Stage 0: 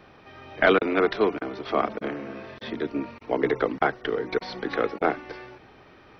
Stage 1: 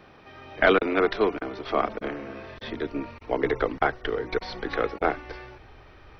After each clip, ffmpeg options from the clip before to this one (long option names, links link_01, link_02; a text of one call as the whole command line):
ffmpeg -i in.wav -af "asubboost=boost=8.5:cutoff=67" out.wav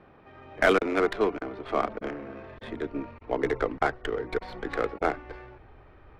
ffmpeg -i in.wav -af "adynamicsmooth=sensitivity=2.5:basefreq=2100,volume=-2dB" out.wav